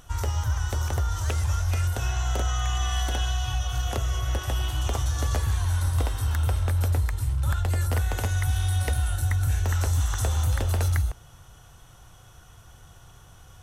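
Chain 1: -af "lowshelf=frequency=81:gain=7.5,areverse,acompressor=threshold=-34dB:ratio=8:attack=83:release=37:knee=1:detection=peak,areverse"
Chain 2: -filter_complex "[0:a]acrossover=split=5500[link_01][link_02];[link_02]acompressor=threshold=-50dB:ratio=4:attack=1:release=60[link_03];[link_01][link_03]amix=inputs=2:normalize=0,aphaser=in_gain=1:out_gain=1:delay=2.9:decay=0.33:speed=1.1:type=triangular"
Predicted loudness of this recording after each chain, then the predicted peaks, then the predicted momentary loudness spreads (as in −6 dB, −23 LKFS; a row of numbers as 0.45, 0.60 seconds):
−32.5, −25.0 LKFS; −18.0, −13.5 dBFS; 17, 4 LU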